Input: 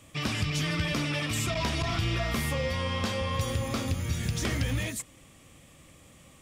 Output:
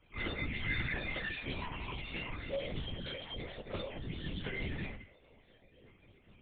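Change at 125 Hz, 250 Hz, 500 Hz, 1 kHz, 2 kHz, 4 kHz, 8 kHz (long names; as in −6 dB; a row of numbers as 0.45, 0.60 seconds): −13.5 dB, −11.0 dB, −8.5 dB, −12.5 dB, −5.5 dB, −10.0 dB, below −40 dB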